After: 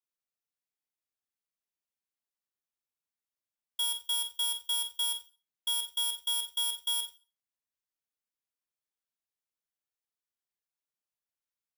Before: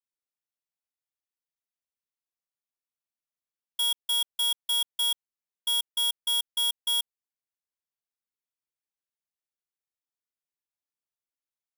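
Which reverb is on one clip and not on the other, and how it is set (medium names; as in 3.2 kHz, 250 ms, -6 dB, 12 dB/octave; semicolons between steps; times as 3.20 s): Schroeder reverb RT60 0.31 s, combs from 29 ms, DRR 6 dB; trim -3.5 dB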